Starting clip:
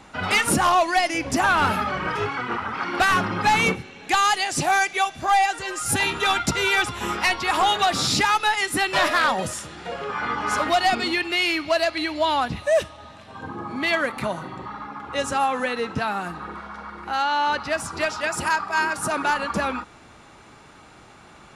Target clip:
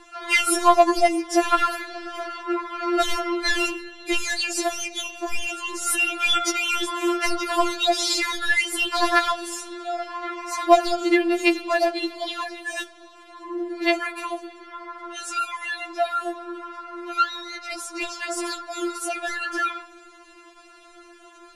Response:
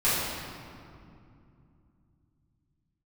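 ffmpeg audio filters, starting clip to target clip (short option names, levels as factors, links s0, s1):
-filter_complex "[0:a]asplit=2[s0][s1];[s1]equalizer=f=6300:w=0.36:g=-14.5[s2];[1:a]atrim=start_sample=2205,lowshelf=f=61:g=-7,highshelf=f=3400:g=-8[s3];[s2][s3]afir=irnorm=-1:irlink=0,volume=0.0355[s4];[s0][s4]amix=inputs=2:normalize=0,afftfilt=real='re*4*eq(mod(b,16),0)':imag='im*4*eq(mod(b,16),0)':win_size=2048:overlap=0.75,volume=1.26"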